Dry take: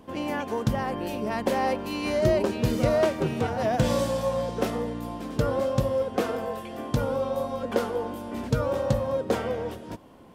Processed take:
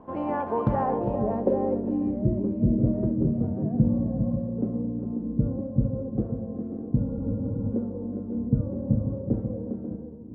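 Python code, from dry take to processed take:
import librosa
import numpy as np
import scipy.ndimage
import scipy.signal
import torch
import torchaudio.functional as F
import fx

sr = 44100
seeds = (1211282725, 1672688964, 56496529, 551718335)

y = fx.echo_multitap(x, sr, ms=(67, 368, 407, 541), db=(-12.0, -12.5, -7.5, -10.0))
y = fx.filter_sweep_lowpass(y, sr, from_hz=990.0, to_hz=240.0, start_s=0.72, end_s=2.25, q=1.6)
y = fx.spec_freeze(y, sr, seeds[0], at_s=7.07, hold_s=0.65)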